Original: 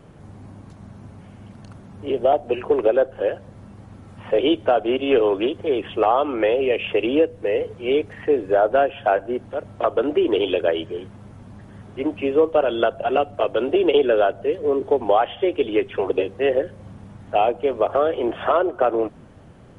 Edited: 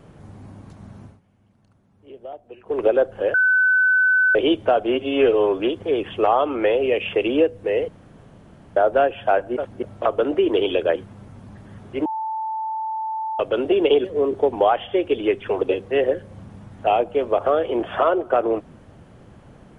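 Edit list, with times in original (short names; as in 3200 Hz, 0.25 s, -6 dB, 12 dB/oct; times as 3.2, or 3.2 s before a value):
1.02–2.83 dip -18.5 dB, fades 0.18 s
3.34–4.35 bleep 1510 Hz -13.5 dBFS
4.95–5.38 stretch 1.5×
7.67–8.55 room tone
9.35–9.61 reverse
10.74–10.99 cut
12.09–13.43 bleep 881 Hz -23.5 dBFS
14.08–14.53 cut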